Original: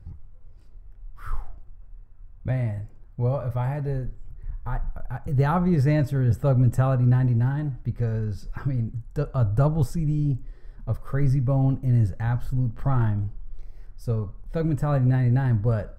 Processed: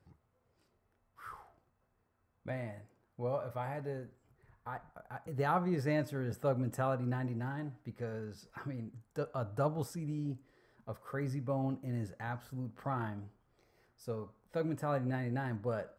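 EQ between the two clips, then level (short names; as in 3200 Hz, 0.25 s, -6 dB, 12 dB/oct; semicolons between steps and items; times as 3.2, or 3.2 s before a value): Bessel high-pass 310 Hz, order 2; -5.5 dB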